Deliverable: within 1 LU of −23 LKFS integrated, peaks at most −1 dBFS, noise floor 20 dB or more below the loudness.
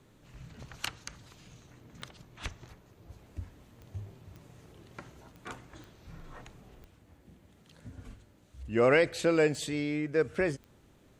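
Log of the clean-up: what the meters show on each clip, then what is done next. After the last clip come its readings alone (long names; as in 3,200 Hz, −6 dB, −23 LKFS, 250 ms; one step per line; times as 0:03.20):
number of clicks 8; integrated loudness −29.5 LKFS; sample peak −12.5 dBFS; target loudness −23.0 LKFS
→ click removal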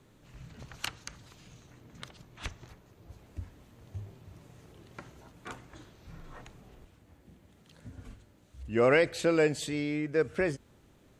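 number of clicks 0; integrated loudness −29.5 LKFS; sample peak −12.5 dBFS; target loudness −23.0 LKFS
→ level +6.5 dB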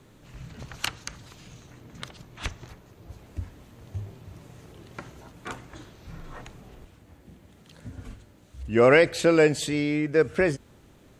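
integrated loudness −23.0 LKFS; sample peak −6.0 dBFS; background noise floor −55 dBFS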